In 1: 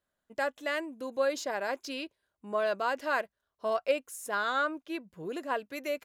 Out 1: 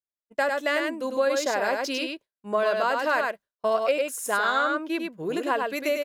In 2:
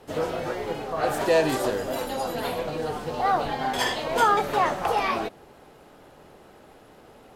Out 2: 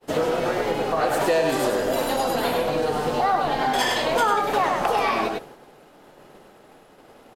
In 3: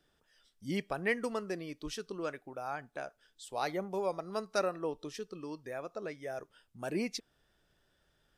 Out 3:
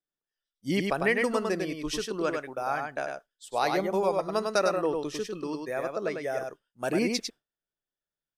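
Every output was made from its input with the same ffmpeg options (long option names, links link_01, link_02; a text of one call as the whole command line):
ffmpeg -i in.wav -filter_complex "[0:a]agate=range=-33dB:threshold=-43dB:ratio=3:detection=peak,equalizer=frequency=64:width_type=o:width=1.3:gain=-11,asplit=2[link_01][link_02];[link_02]aecho=0:1:100:0.596[link_03];[link_01][link_03]amix=inputs=2:normalize=0,acompressor=threshold=-29dB:ratio=3,volume=8.5dB" out.wav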